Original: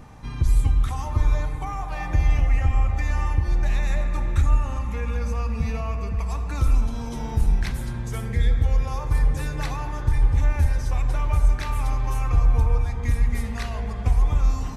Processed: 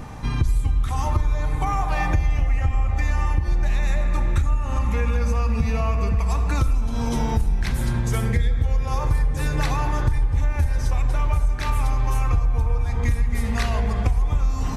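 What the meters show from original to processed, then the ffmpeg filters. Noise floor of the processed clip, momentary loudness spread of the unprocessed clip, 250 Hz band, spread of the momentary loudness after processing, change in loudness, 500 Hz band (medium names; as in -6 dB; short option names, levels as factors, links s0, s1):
-25 dBFS, 7 LU, +4.5 dB, 2 LU, +1.5 dB, +4.0 dB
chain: -af "acompressor=threshold=0.0501:ratio=6,volume=2.82"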